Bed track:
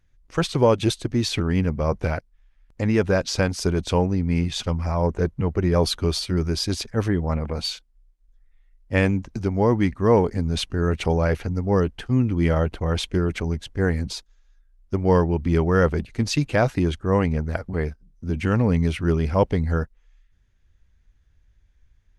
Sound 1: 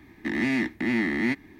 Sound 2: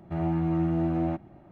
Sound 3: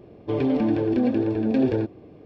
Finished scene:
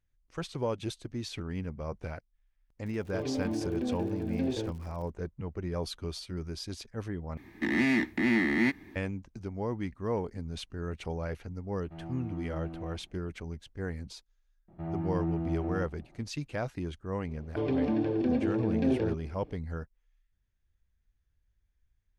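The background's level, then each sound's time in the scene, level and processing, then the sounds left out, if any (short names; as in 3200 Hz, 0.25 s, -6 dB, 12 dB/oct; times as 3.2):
bed track -14.5 dB
2.85 add 3 -11 dB + crackle 120/s -34 dBFS
7.37 replace with 1 -1 dB
11.8 add 2 -15 dB
14.68 add 2 -7 dB + high shelf 2200 Hz -8 dB
17.28 add 3 -6.5 dB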